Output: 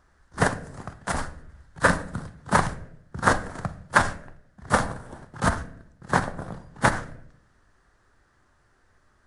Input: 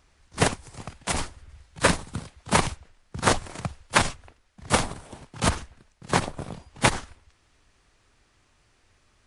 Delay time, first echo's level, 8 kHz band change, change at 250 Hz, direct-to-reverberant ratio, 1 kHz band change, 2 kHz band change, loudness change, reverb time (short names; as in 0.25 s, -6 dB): none, none, -6.0 dB, +0.5 dB, 10.5 dB, +2.0 dB, +2.5 dB, +0.5 dB, 0.70 s